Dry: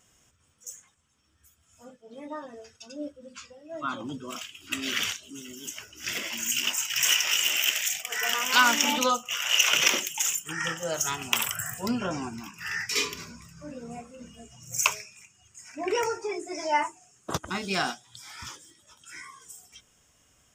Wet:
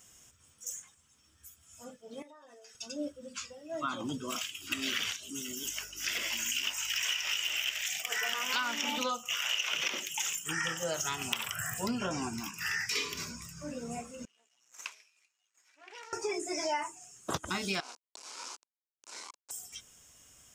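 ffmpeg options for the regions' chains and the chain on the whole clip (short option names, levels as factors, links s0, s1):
-filter_complex "[0:a]asettb=1/sr,asplit=3[s0][s1][s2];[s0]atrim=end=2.224[s3];[s1]atrim=start=2.22:end=2.75,asetpts=PTS-STARTPTS,afade=t=in:d=0.004:c=qsin,afade=t=out:st=0.526:d=0.004:c=qsin,highpass=420,acompressor=threshold=0.00251:ratio=12:attack=3.2:release=140:knee=1:detection=peak[s4];[s2]atrim=start=2.746[s5];[s3][s4]acrossfade=d=0.004:c1=hsin:c2=qsin[s6];[s6][s5]acrossfade=d=0.004:c1=qsin:c2=hsin,asettb=1/sr,asplit=3[s7][s8][s9];[s7]atrim=end=5.634[s10];[s8]atrim=start=5.63:end=7.82,asetpts=PTS-STARTPTS,afade=t=in:d=0.004:c=qsin,afade=t=out:st=2.186:d=0.004:c=qsin,highpass=f=420:p=1,aeval=exprs='val(0)+0.001*(sin(2*PI*50*n/s)+sin(2*PI*2*50*n/s)/2+sin(2*PI*3*50*n/s)/3+sin(2*PI*4*50*n/s)/4+sin(2*PI*5*50*n/s)/5)':c=same[s11];[s9]atrim=start=7.816[s12];[s10][s11]acrossfade=d=0.004:c1=hsin:c2=qsin[s13];[s13][s12]acrossfade=d=0.004:c1=qsin:c2=hsin,asettb=1/sr,asplit=3[s14][s15][s16];[s14]atrim=end=14.254[s17];[s15]atrim=start=14.25:end=16.13,asetpts=PTS-STARTPTS,afade=t=in:d=0.004:c=qsin,afade=t=out:st=1.876:d=0.004:c=qsin,aeval=exprs='max(val(0),0)':c=same,highpass=240,lowpass=2100,aderivative[s18];[s16]atrim=start=16.126[s19];[s17][s18]acrossfade=d=0.004:c1=hsin:c2=qsin[s20];[s20][s19]acrossfade=d=0.004:c1=qsin:c2=hsin,asettb=1/sr,asplit=3[s21][s22][s23];[s21]atrim=end=17.804[s24];[s22]atrim=start=17.8:end=19.51,asetpts=PTS-STARTPTS,afade=t=in:d=0.004:c=qsin,afade=t=out:st=1.706:d=0.004:c=qsin,acompressor=threshold=0.0141:ratio=10:attack=3.2:release=140:knee=1:detection=peak,acrusher=bits=4:dc=4:mix=0:aa=0.000001,highpass=f=300:w=0.5412,highpass=f=300:w=1.3066,equalizer=f=990:t=q:w=4:g=7,equalizer=f=1900:t=q:w=4:g=-9,equalizer=f=3400:t=q:w=4:g=-8,lowpass=f=7200:w=0.5412,lowpass=f=7200:w=1.3066[s25];[s23]atrim=start=19.506[s26];[s24][s25]acrossfade=d=0.004:c1=hsin:c2=qsin[s27];[s27][s26]acrossfade=d=0.004:c1=qsin:c2=hsin,acrossover=split=4700[s28][s29];[s29]acompressor=threshold=0.00708:ratio=4:attack=1:release=60[s30];[s28][s30]amix=inputs=2:normalize=0,highshelf=f=4300:g=9,acompressor=threshold=0.0316:ratio=6"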